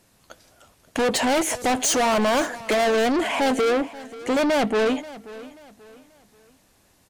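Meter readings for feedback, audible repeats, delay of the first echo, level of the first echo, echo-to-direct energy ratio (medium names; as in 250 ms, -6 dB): 35%, 2, 534 ms, -18.0 dB, -17.5 dB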